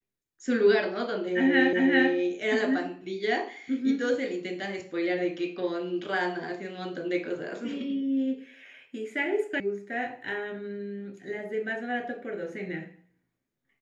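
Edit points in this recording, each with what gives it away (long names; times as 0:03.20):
0:01.73: the same again, the last 0.39 s
0:09.60: cut off before it has died away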